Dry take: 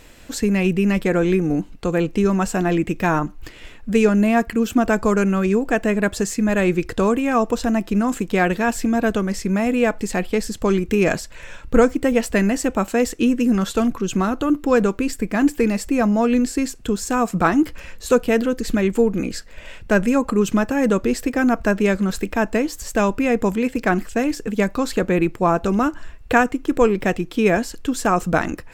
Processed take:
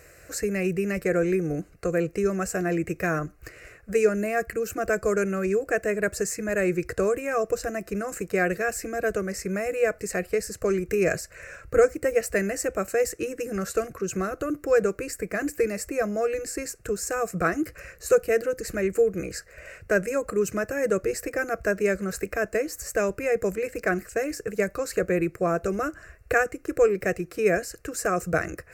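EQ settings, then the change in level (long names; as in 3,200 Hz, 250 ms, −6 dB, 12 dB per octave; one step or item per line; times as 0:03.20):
high-pass filter 69 Hz 12 dB per octave
dynamic equaliser 1,000 Hz, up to −6 dB, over −30 dBFS, Q 0.8
phaser with its sweep stopped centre 910 Hz, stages 6
0.0 dB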